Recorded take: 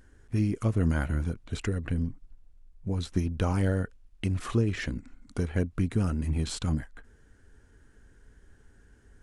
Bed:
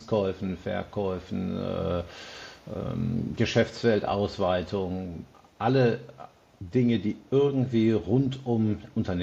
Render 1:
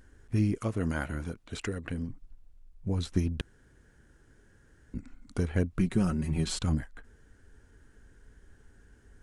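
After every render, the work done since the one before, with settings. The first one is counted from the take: 0.58–2.09 s: bass shelf 170 Hz -10.5 dB; 3.41–4.94 s: room tone; 5.79–6.59 s: comb 5.4 ms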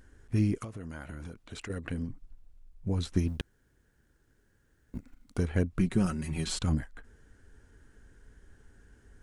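0.64–1.70 s: compression 10:1, threshold -37 dBFS; 3.28–5.38 s: companding laws mixed up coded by A; 6.06–6.47 s: tilt shelf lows -4.5 dB, about 1.1 kHz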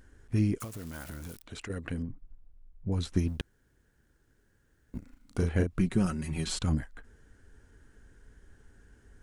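0.60–1.43 s: zero-crossing glitches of -37 dBFS; 2.02–2.92 s: tape spacing loss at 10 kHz 34 dB; 4.98–5.67 s: doubling 36 ms -5 dB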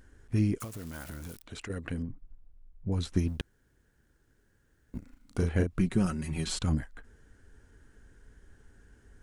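no audible change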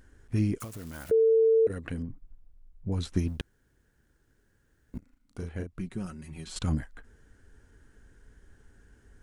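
1.11–1.67 s: bleep 448 Hz -18 dBFS; 4.98–6.56 s: gain -9 dB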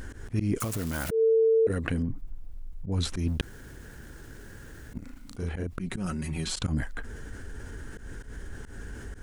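slow attack 130 ms; level flattener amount 50%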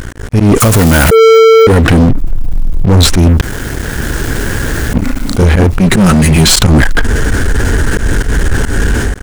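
level rider gain up to 13 dB; waveshaping leveller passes 5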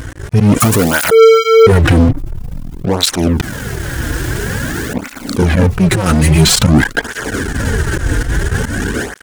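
cancelling through-zero flanger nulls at 0.49 Hz, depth 5.4 ms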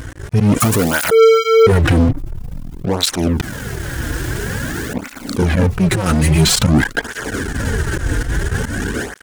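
trim -3.5 dB

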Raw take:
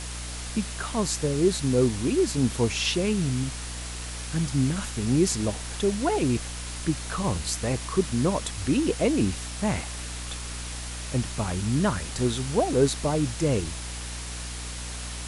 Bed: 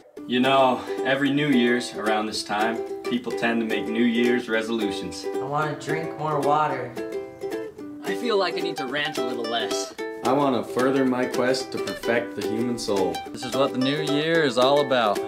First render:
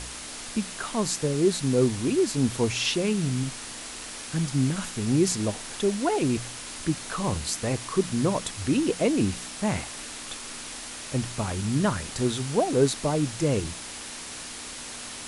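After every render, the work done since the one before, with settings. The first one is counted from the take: de-hum 60 Hz, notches 3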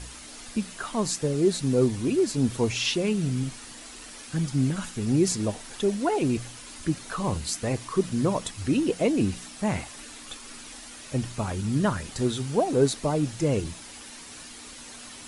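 noise reduction 8 dB, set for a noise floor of -39 dBFS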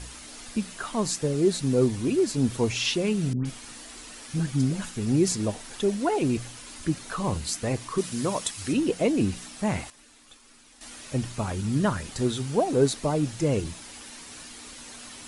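3.33–4.82 s: phase dispersion highs, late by 123 ms, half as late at 1.1 kHz; 7.98–8.73 s: tilt EQ +2 dB/octave; 9.90–10.81 s: gain -12 dB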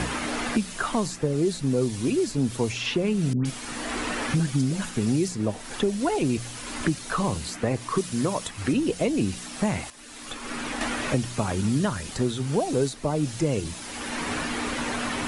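three bands compressed up and down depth 100%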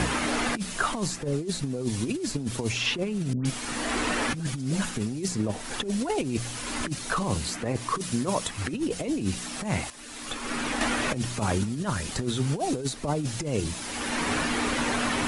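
compressor with a negative ratio -26 dBFS, ratio -0.5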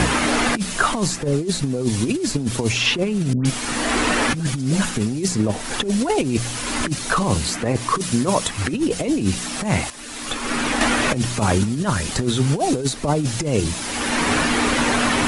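trim +8 dB

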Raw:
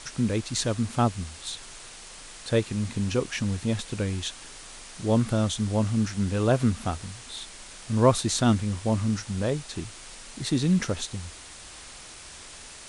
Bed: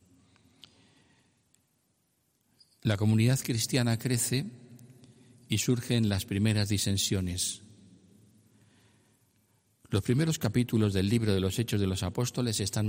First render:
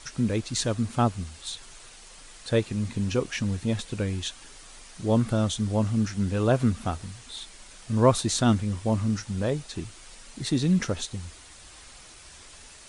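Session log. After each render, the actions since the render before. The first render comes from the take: noise reduction 6 dB, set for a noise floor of -45 dBFS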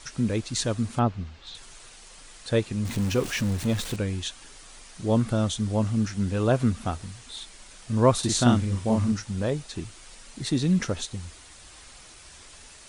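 0.99–1.55 s: distance through air 200 m; 2.85–3.96 s: jump at every zero crossing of -32 dBFS; 8.19–9.12 s: doubling 41 ms -3 dB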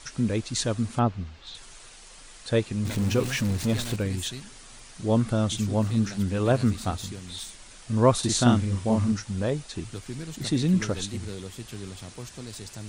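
add bed -10 dB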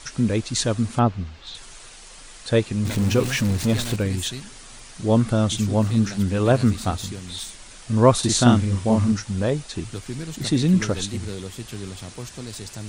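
trim +4.5 dB

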